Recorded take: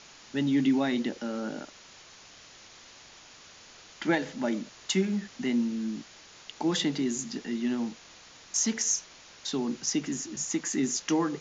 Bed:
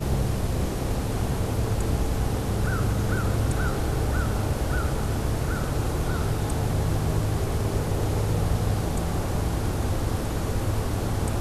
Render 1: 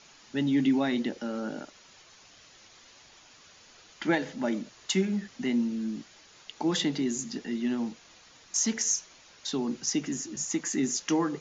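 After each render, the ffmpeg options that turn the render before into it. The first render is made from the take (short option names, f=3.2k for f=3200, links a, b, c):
-af "afftdn=nr=6:nf=-52"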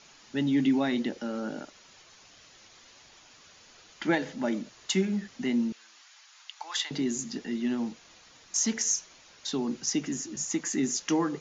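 -filter_complex "[0:a]asettb=1/sr,asplit=3[a][b][c];[a]atrim=end=5.724[d];[b]atrim=start=5.72:end=6.91,asetpts=PTS-STARTPTS,afade=t=in:d=0.004:c=qsin,afade=t=out:st=1.186:d=0.004:c=qsin,highpass=f=880:w=0.5412,highpass=f=880:w=1.3066[e];[c]atrim=start=6.906[f];[d][e]acrossfade=d=0.004:c1=hsin:c2=qsin[g];[g][f]acrossfade=d=0.004:c1=qsin:c2=hsin"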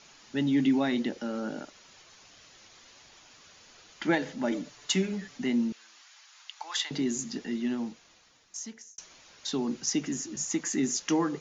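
-filter_complex "[0:a]asettb=1/sr,asplit=3[a][b][c];[a]atrim=end=4.514[d];[b]atrim=start=4.51:end=5.38,asetpts=PTS-STARTPTS,afade=t=in:d=0.004:c=qsin,afade=t=out:st=0.866:d=0.004:c=qsin,aecho=1:1:6.9:0.65,atrim=end_sample=38367[e];[c]atrim=start=5.376[f];[d][e]acrossfade=d=0.004:c1=hsin:c2=qsin[g];[g][f]acrossfade=d=0.004:c1=qsin:c2=hsin,asplit=2[h][i];[h]atrim=end=8.98,asetpts=PTS-STARTPTS,afade=t=out:st=7.49:d=1.49[j];[i]atrim=start=8.98,asetpts=PTS-STARTPTS,afade=t=in:d=0.004:c=hsin[k];[j][k]concat=n=2:v=0:a=1"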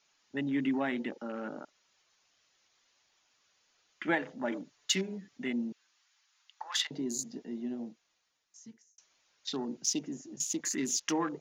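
-af "afwtdn=0.00891,lowshelf=f=430:g=-9"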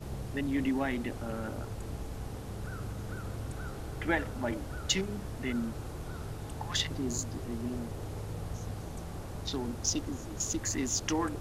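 -filter_complex "[1:a]volume=-14.5dB[a];[0:a][a]amix=inputs=2:normalize=0"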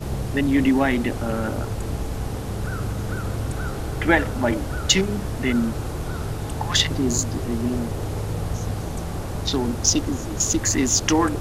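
-af "volume=12dB,alimiter=limit=-1dB:level=0:latency=1"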